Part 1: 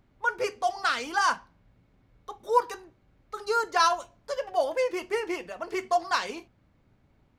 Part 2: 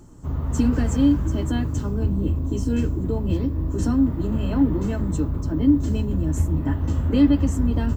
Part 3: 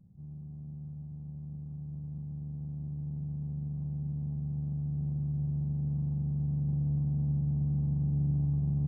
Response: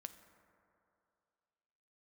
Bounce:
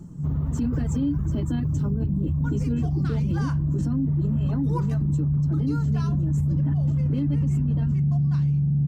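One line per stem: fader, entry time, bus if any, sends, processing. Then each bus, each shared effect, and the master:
3.14 s -13 dB -> 3.81 s -5.5 dB -> 5.46 s -5.5 dB -> 6.22 s -17 dB, 2.20 s, no bus, no send, none
-4.5 dB, 0.00 s, bus A, no send, reverb removal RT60 0.65 s
+2.5 dB, 0.00 s, bus A, no send, peaking EQ 170 Hz +4.5 dB 0.77 oct
bus A: 0.0 dB, peaking EQ 150 Hz +10.5 dB 2.2 oct; peak limiter -12 dBFS, peak gain reduction 9.5 dB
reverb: none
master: peak limiter -17.5 dBFS, peak gain reduction 7 dB

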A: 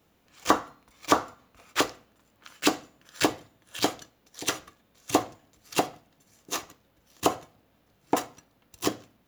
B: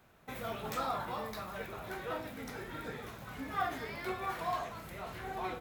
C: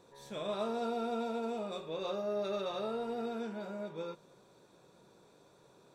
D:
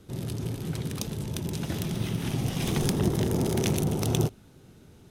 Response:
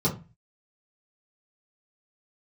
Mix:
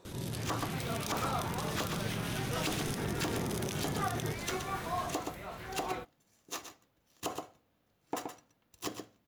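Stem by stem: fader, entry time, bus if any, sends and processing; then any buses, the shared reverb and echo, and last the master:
-9.0 dB, 0.00 s, no send, echo send -9.5 dB, none
-0.5 dB, 0.45 s, no send, no echo send, none
-18.0 dB, 0.00 s, no send, no echo send, sine folder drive 16 dB, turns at -25.5 dBFS
-11.0 dB, 0.05 s, no send, no echo send, tilt shelf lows -3 dB; level flattener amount 70%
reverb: none
echo: delay 123 ms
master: peak limiter -22.5 dBFS, peak gain reduction 9.5 dB

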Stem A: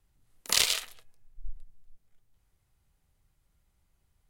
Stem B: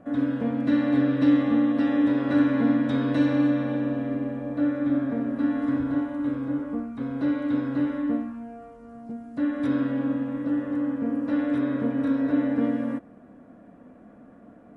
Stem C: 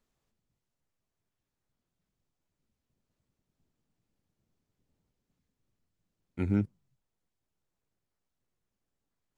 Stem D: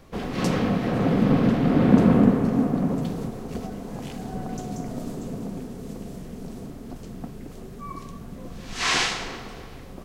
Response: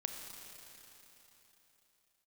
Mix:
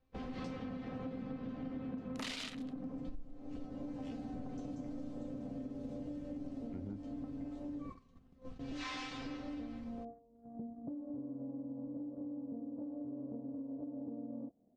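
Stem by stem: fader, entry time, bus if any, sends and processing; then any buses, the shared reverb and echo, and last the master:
-6.5 dB, 1.70 s, no send, waveshaping leveller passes 1; sine folder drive 10 dB, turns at -5.5 dBFS
-6.5 dB, 1.50 s, muted 7.90–8.59 s, no send, gain riding 0.5 s; steep low-pass 800 Hz 36 dB/octave; compression 6:1, threshold -33 dBFS, peak gain reduction 14 dB
-11.5 dB, 0.35 s, no send, low-pass that closes with the level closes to 1.1 kHz
-1.5 dB, 0.00 s, no send, peaking EQ 71 Hz +9.5 dB 1.4 oct; feedback comb 260 Hz, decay 0.19 s, harmonics all, mix 90%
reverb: none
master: gate -45 dBFS, range -16 dB; low-pass 4.8 kHz 12 dB/octave; compression 16:1, threshold -39 dBFS, peak gain reduction 23 dB

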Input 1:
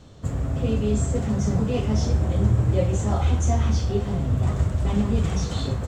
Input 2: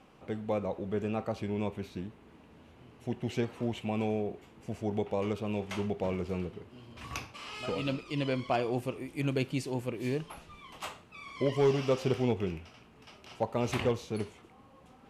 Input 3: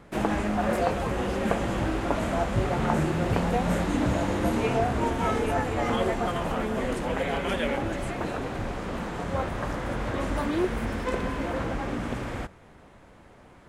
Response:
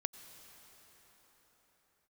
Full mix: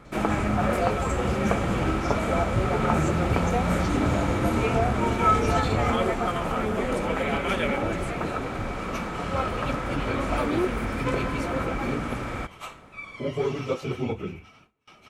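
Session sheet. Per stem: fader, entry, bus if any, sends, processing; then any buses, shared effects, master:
-5.0 dB, 0.05 s, no send, compressor with a negative ratio -26 dBFS, ratio -1
-0.5 dB, 1.80 s, no send, phase randomisation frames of 50 ms; band-stop 4.9 kHz, Q 11; gate with hold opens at -45 dBFS
+0.5 dB, 0.00 s, no send, none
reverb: none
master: small resonant body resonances 1.3/2.3 kHz, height 12 dB, ringing for 45 ms

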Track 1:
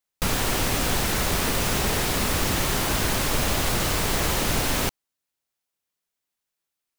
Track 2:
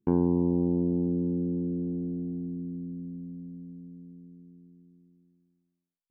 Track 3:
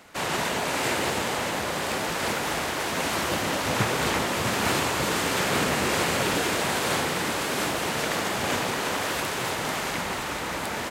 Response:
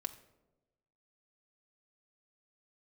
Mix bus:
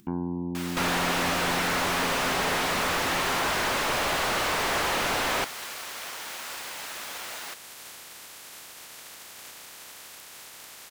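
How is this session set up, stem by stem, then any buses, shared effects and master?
-2.5 dB, 0.55 s, no send, word length cut 8-bit, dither triangular; overdrive pedal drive 34 dB, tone 1.3 kHz, clips at -10.5 dBFS
+2.0 dB, 0.00 s, no send, peaking EQ 470 Hz -13.5 dB 0.65 oct
-19.5 dB, 0.95 s, no send, spectral contrast reduction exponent 0.26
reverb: none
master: bass shelf 430 Hz -8.5 dB; upward compressor, threshold -39 dBFS

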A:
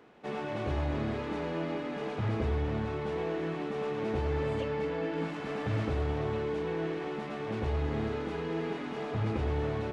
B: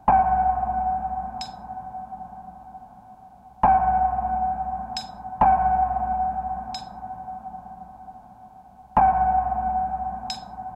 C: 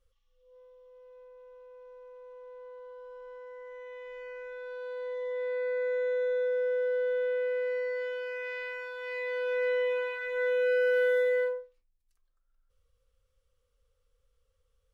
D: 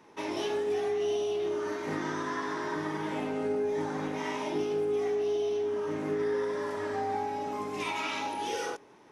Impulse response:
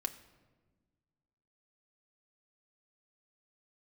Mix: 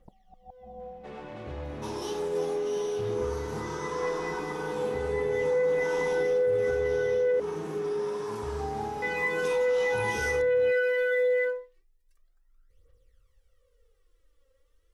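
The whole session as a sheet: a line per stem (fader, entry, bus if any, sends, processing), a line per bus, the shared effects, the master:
-7.0 dB, 0.80 s, no send, none
-17.5 dB, 0.00 s, no send, steep low-pass 600 Hz 36 dB/octave; comb 5.3 ms, depth 91%; inverted gate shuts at -18 dBFS, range -27 dB
+1.5 dB, 0.00 s, muted 7.40–9.02 s, no send, small resonant body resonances 350/1900 Hz, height 12 dB, ringing for 25 ms; phaser 0.31 Hz, delay 3.8 ms, feedback 65%
-0.5 dB, 1.65 s, no send, treble shelf 5.3 kHz +7.5 dB; static phaser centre 410 Hz, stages 8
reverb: none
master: peak limiter -19.5 dBFS, peak gain reduction 11 dB

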